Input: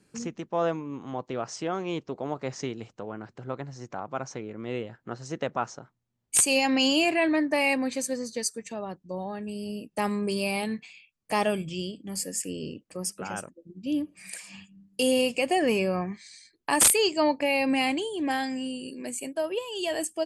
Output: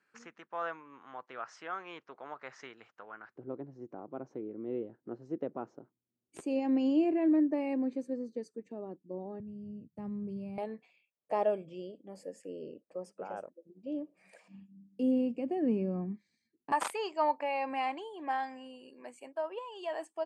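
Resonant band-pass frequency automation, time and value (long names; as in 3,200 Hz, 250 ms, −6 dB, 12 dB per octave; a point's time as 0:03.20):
resonant band-pass, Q 2.1
1,500 Hz
from 0:03.36 330 Hz
from 0:09.40 120 Hz
from 0:10.58 570 Hz
from 0:14.48 240 Hz
from 0:16.72 970 Hz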